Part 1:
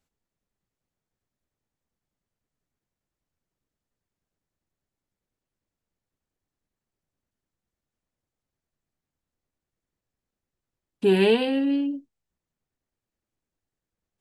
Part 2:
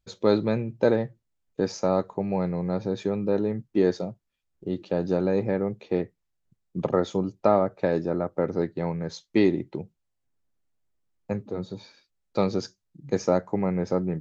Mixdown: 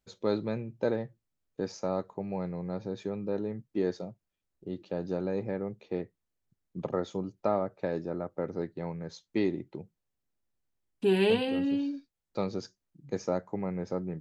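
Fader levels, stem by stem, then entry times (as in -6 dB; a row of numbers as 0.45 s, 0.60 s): -5.5 dB, -8.0 dB; 0.00 s, 0.00 s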